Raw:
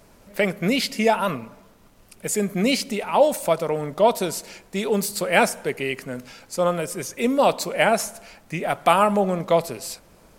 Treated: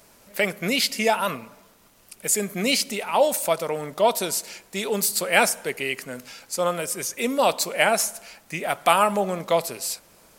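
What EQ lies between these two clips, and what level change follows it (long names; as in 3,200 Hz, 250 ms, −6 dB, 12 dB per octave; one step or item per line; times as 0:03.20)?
spectral tilt +2 dB per octave
−1.0 dB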